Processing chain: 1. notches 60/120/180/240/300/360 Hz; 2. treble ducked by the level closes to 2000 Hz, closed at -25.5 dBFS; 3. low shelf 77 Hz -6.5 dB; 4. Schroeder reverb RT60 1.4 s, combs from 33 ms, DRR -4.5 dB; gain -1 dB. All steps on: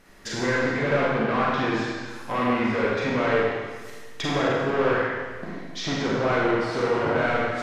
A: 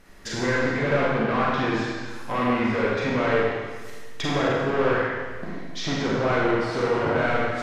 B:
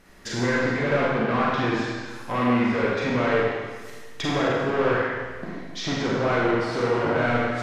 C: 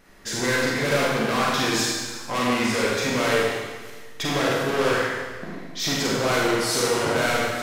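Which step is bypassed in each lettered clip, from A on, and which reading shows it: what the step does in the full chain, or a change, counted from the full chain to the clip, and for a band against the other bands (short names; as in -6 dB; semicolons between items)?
3, 125 Hz band +1.5 dB; 1, 125 Hz band +2.0 dB; 2, 8 kHz band +14.0 dB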